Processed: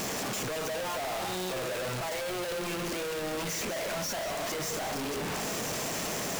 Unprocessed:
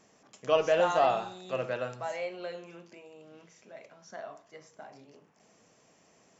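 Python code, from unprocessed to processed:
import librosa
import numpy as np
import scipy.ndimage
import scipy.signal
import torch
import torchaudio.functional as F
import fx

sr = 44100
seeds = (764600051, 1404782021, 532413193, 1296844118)

y = np.sign(x) * np.sqrt(np.mean(np.square(x)))
y = fx.echo_split(y, sr, split_hz=330.0, low_ms=418, high_ms=191, feedback_pct=52, wet_db=-13.0)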